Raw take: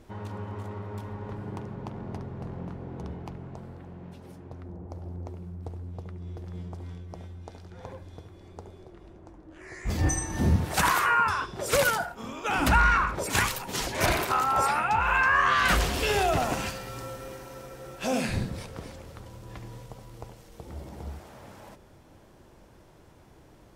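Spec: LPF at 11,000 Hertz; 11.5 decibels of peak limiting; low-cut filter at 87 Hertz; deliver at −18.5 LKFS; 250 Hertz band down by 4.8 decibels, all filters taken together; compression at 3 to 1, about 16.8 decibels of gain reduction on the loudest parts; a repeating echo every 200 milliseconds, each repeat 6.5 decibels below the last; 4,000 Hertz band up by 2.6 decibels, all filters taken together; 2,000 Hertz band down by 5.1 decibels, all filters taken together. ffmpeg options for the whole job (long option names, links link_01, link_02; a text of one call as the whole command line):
ffmpeg -i in.wav -af "highpass=87,lowpass=11000,equalizer=frequency=250:width_type=o:gain=-6.5,equalizer=frequency=2000:width_type=o:gain=-9,equalizer=frequency=4000:width_type=o:gain=6.5,acompressor=threshold=-45dB:ratio=3,alimiter=level_in=13dB:limit=-24dB:level=0:latency=1,volume=-13dB,aecho=1:1:200|400|600|800|1000|1200:0.473|0.222|0.105|0.0491|0.0231|0.0109,volume=28.5dB" out.wav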